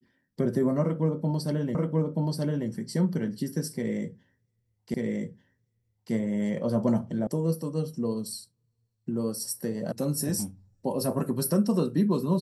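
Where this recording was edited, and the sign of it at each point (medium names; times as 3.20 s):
1.75 s: repeat of the last 0.93 s
4.94 s: repeat of the last 1.19 s
7.27 s: sound stops dead
9.92 s: sound stops dead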